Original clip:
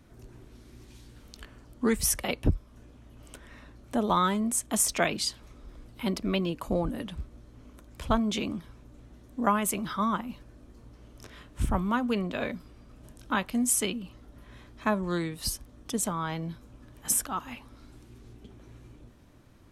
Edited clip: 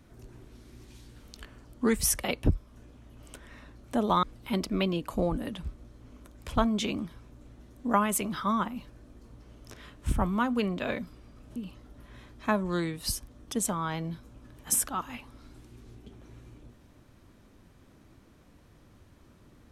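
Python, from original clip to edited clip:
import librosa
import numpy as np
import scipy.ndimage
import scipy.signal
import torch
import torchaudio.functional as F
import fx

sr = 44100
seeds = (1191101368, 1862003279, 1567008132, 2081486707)

y = fx.edit(x, sr, fx.cut(start_s=4.23, length_s=1.53),
    fx.cut(start_s=13.09, length_s=0.85), tone=tone)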